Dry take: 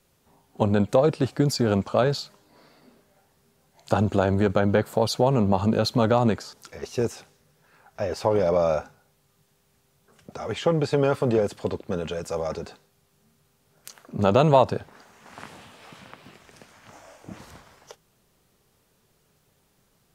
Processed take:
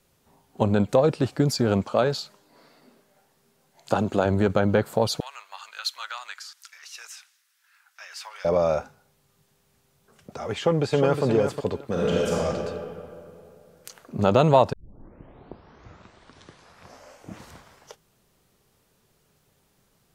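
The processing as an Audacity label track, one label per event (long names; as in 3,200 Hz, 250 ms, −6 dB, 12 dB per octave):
1.850000	4.260000	parametric band 62 Hz −15 dB 1.3 octaves
5.200000	8.450000	high-pass filter 1,400 Hz 24 dB per octave
10.560000	11.240000	delay throw 360 ms, feedback 15%, level −6.5 dB
11.900000	12.340000	thrown reverb, RT60 2.6 s, DRR −6.5 dB
14.730000	14.730000	tape start 2.57 s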